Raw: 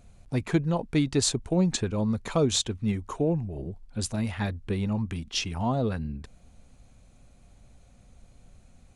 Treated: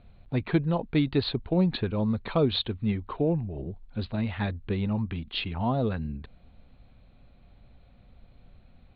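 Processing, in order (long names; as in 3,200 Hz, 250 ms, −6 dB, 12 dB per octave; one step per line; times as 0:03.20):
Butterworth low-pass 4,300 Hz 96 dB per octave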